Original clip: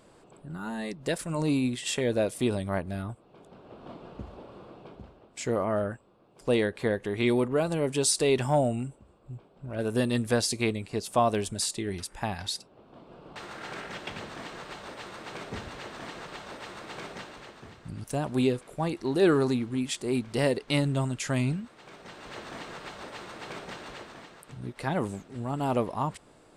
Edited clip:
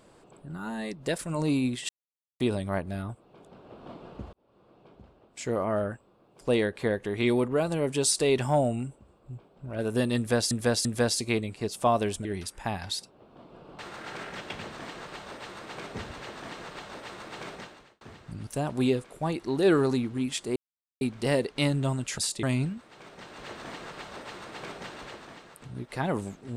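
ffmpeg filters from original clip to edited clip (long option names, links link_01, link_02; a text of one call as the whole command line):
ffmpeg -i in.wav -filter_complex "[0:a]asplit=11[link_01][link_02][link_03][link_04][link_05][link_06][link_07][link_08][link_09][link_10][link_11];[link_01]atrim=end=1.89,asetpts=PTS-STARTPTS,afade=type=out:start_time=1.886:duration=0.004:curve=hsin[link_12];[link_02]atrim=start=1.89:end=2.4,asetpts=PTS-STARTPTS,volume=0[link_13];[link_03]atrim=start=2.4:end=4.33,asetpts=PTS-STARTPTS,afade=type=in:duration=0.004:curve=hsin,afade=type=out:start_time=1.926:duration=0.004:curve=hsin[link_14];[link_04]atrim=start=4.33:end=10.512,asetpts=PTS-STARTPTS,afade=type=in:duration=1.36[link_15];[link_05]atrim=start=10.168:end=10.512[link_16];[link_06]atrim=start=10.168:end=11.572[link_17];[link_07]atrim=start=11.818:end=17.58,asetpts=PTS-STARTPTS,afade=type=out:start_time=5.282:duration=0.48[link_18];[link_08]atrim=start=17.58:end=20.13,asetpts=PTS-STARTPTS,afade=type=in:duration=0.004:curve=hsin,afade=type=out:start_time=2.546:duration=0.004:curve=hsin,apad=pad_dur=0.45[link_19];[link_09]atrim=start=20.13:end=21.302,asetpts=PTS-STARTPTS,afade=type=in:duration=0.004:curve=hsin[link_20];[link_10]atrim=start=11.568:end=11.822[link_21];[link_11]atrim=start=21.298[link_22];[link_12][link_13][link_14][link_15]concat=n=4:v=0:a=1[link_23];[link_23][link_16]acrossfade=duration=0.004:curve1=hsin:curve2=hsin[link_24];[link_24][link_17]acrossfade=duration=0.004:curve1=hsin:curve2=hsin[link_25];[link_18][link_19][link_20]concat=n=3:v=0:a=1[link_26];[link_25][link_26]acrossfade=duration=0.004:curve1=hsin:curve2=hsin[link_27];[link_27][link_21]acrossfade=duration=0.004:curve1=hsin:curve2=hsin[link_28];[link_28][link_22]acrossfade=duration=0.004:curve1=hsin:curve2=hsin" out.wav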